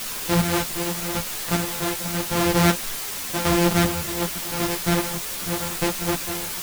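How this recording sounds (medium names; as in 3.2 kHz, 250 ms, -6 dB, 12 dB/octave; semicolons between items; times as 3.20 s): a buzz of ramps at a fixed pitch in blocks of 256 samples; chopped level 0.87 Hz, depth 60%, duty 35%; a quantiser's noise floor 6-bit, dither triangular; a shimmering, thickened sound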